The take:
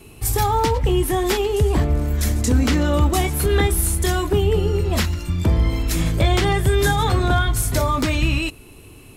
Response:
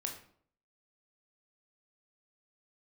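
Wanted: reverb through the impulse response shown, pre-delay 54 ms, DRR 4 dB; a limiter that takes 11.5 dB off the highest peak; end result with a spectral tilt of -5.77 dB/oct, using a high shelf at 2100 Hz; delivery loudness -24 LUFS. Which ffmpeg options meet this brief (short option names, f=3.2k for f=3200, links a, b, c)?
-filter_complex "[0:a]highshelf=f=2.1k:g=-4,alimiter=limit=-19dB:level=0:latency=1,asplit=2[a][b];[1:a]atrim=start_sample=2205,adelay=54[c];[b][c]afir=irnorm=-1:irlink=0,volume=-4dB[d];[a][d]amix=inputs=2:normalize=0,volume=1.5dB"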